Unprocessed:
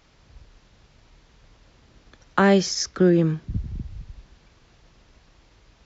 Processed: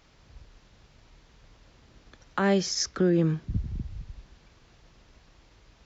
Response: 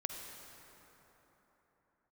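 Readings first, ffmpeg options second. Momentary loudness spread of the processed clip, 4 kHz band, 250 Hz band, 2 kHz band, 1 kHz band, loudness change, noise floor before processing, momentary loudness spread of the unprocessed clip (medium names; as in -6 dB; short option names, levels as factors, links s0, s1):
15 LU, -3.0 dB, -5.5 dB, -7.0 dB, -7.5 dB, -5.5 dB, -58 dBFS, 18 LU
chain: -af "alimiter=limit=0.237:level=0:latency=1:release=293,volume=0.841"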